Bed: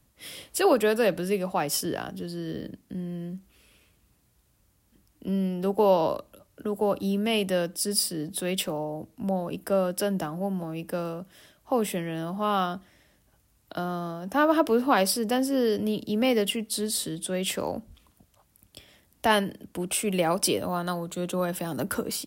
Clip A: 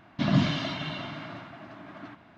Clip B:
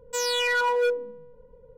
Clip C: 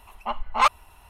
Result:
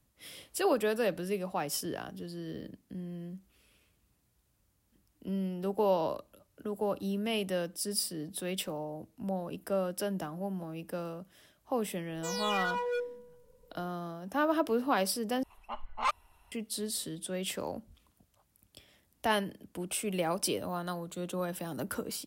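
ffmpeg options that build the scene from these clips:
-filter_complex "[0:a]volume=0.447,asplit=2[s0][s1];[s0]atrim=end=15.434[s2];[3:a]atrim=end=1.09,asetpts=PTS-STARTPTS,volume=0.266[s3];[s1]atrim=start=16.516[s4];[2:a]atrim=end=1.77,asetpts=PTS-STARTPTS,volume=0.316,afade=t=in:d=0.004:c=hsin,afade=t=out:st=1.766:d=0.004:c=hsin,adelay=12100[s5];[s2][s3]acrossfade=d=0.004:c1=hsin:c2=hsin[s6];[s6][s4]acrossfade=d=0.004:c1=hsin:c2=hsin[s7];[s7][s5]amix=inputs=2:normalize=0"

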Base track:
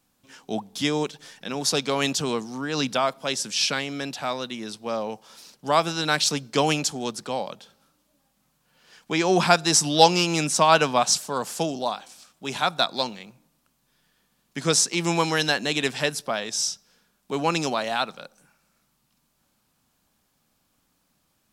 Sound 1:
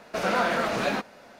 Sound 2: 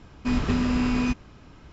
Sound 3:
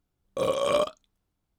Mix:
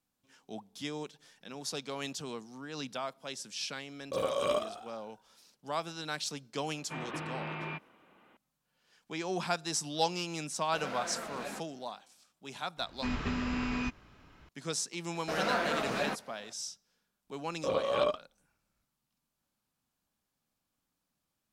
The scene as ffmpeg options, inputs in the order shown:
-filter_complex "[3:a]asplit=2[s0][s1];[2:a]asplit=2[s2][s3];[1:a]asplit=2[s4][s5];[0:a]volume=0.188[s6];[s0]asplit=7[s7][s8][s9][s10][s11][s12][s13];[s8]adelay=105,afreqshift=58,volume=0.251[s14];[s9]adelay=210,afreqshift=116,volume=0.133[s15];[s10]adelay=315,afreqshift=174,volume=0.0708[s16];[s11]adelay=420,afreqshift=232,volume=0.0376[s17];[s12]adelay=525,afreqshift=290,volume=0.0197[s18];[s13]adelay=630,afreqshift=348,volume=0.0105[s19];[s7][s14][s15][s16][s17][s18][s19]amix=inputs=7:normalize=0[s20];[s2]highpass=f=360:t=q:w=0.5412,highpass=f=360:t=q:w=1.307,lowpass=f=3400:t=q:w=0.5176,lowpass=f=3400:t=q:w=0.7071,lowpass=f=3400:t=q:w=1.932,afreqshift=-92[s21];[s3]equalizer=f=1900:w=0.47:g=7[s22];[s1]lowpass=3900[s23];[s20]atrim=end=1.58,asetpts=PTS-STARTPTS,volume=0.473,afade=t=in:d=0.004:c=hsin,afade=t=out:st=1.576:d=0.004:c=hsin,adelay=3750[s24];[s21]atrim=end=1.72,asetpts=PTS-STARTPTS,volume=0.473,afade=t=in:d=0.004:c=hsin,afade=t=out:st=1.716:d=0.004:c=hsin,adelay=6650[s25];[s4]atrim=end=1.39,asetpts=PTS-STARTPTS,volume=0.178,afade=t=in:d=0.004:c=hsin,afade=t=out:st=1.386:d=0.004:c=hsin,adelay=10590[s26];[s22]atrim=end=1.72,asetpts=PTS-STARTPTS,volume=0.282,afade=t=in:d=0.004:c=hsin,afade=t=out:st=1.716:d=0.004:c=hsin,adelay=12770[s27];[s5]atrim=end=1.39,asetpts=PTS-STARTPTS,volume=0.473,afade=t=in:d=0.004:c=hsin,afade=t=out:st=1.386:d=0.004:c=hsin,adelay=15140[s28];[s23]atrim=end=1.58,asetpts=PTS-STARTPTS,volume=0.562,afade=t=in:d=0.004:c=hsin,afade=t=out:st=1.576:d=0.004:c=hsin,adelay=17270[s29];[s6][s24][s25][s26][s27][s28][s29]amix=inputs=7:normalize=0"

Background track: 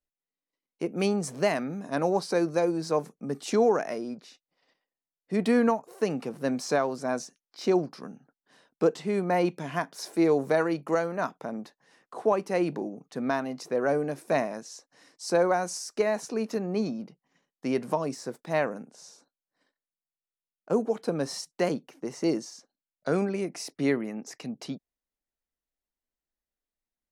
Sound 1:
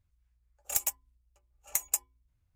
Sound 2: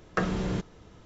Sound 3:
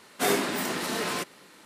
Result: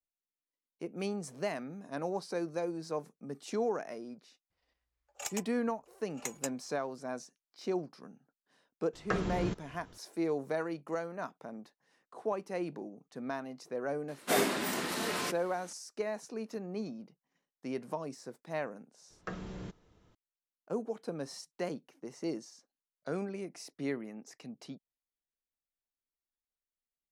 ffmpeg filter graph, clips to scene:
-filter_complex "[2:a]asplit=2[s0][s1];[0:a]volume=0.316[s2];[1:a]acrossover=split=260 6300:gain=0.158 1 0.0794[s3][s4][s5];[s3][s4][s5]amix=inputs=3:normalize=0,atrim=end=2.55,asetpts=PTS-STARTPTS,volume=0.944,afade=t=in:d=0.004:c=hsin,afade=t=out:st=2.546:d=0.004:c=hsin,adelay=4500[s6];[s0]atrim=end=1.05,asetpts=PTS-STARTPTS,volume=0.562,afade=t=in:d=0.004:c=hsin,afade=t=out:st=1.046:d=0.004:c=hsin,adelay=8930[s7];[3:a]atrim=end=1.65,asetpts=PTS-STARTPTS,volume=0.596,afade=t=in:d=0.004:c=hsin,afade=t=out:st=1.646:d=0.004:c=hsin,adelay=14080[s8];[s1]atrim=end=1.05,asetpts=PTS-STARTPTS,volume=0.211,afade=t=in:d=0.004:c=hsin,afade=t=out:st=1.046:d=0.004:c=hsin,adelay=19100[s9];[s2][s6][s7][s8][s9]amix=inputs=5:normalize=0"

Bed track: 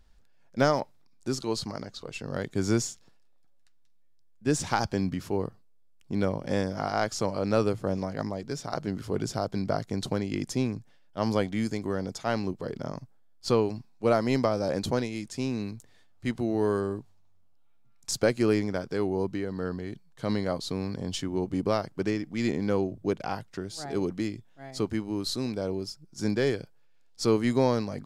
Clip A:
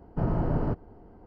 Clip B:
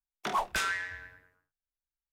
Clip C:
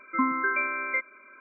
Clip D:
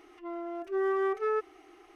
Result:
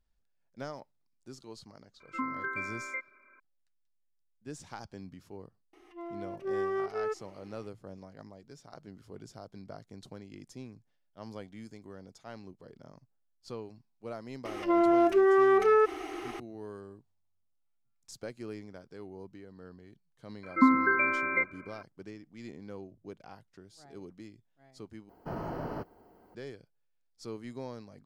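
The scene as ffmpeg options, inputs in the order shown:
-filter_complex "[3:a]asplit=2[s0][s1];[4:a]asplit=2[s2][s3];[0:a]volume=0.133[s4];[s2]equalizer=f=1400:w=7.6:g=-6[s5];[s3]alimiter=level_in=37.6:limit=0.891:release=50:level=0:latency=1[s6];[s1]lowshelf=f=310:g=11[s7];[1:a]aemphasis=mode=production:type=riaa[s8];[s4]asplit=2[s9][s10];[s9]atrim=end=25.094[s11];[s8]atrim=end=1.26,asetpts=PTS-STARTPTS,volume=0.708[s12];[s10]atrim=start=26.346[s13];[s0]atrim=end=1.4,asetpts=PTS-STARTPTS,volume=0.335,afade=t=in:d=0.004:c=hsin,afade=t=out:st=1.396:d=0.004:c=hsin,adelay=2000[s14];[s5]atrim=end=1.95,asetpts=PTS-STARTPTS,volume=0.668,afade=t=in:d=0.004:c=hsin,afade=t=out:st=1.946:d=0.004:c=hsin,adelay=252693S[s15];[s6]atrim=end=1.95,asetpts=PTS-STARTPTS,volume=0.168,afade=t=in:d=0.004:c=hsin,afade=t=out:st=1.946:d=0.004:c=hsin,adelay=14450[s16];[s7]atrim=end=1.4,asetpts=PTS-STARTPTS,volume=0.944,afade=t=in:d=0.004:c=hsin,afade=t=out:st=1.396:d=0.004:c=hsin,adelay=20430[s17];[s11][s12]acrossfade=d=0.004:c1=hsin:c2=hsin[s18];[s18][s13]acrossfade=d=0.004:c1=hsin:c2=hsin[s19];[s19][s14][s15][s16][s17]amix=inputs=5:normalize=0"

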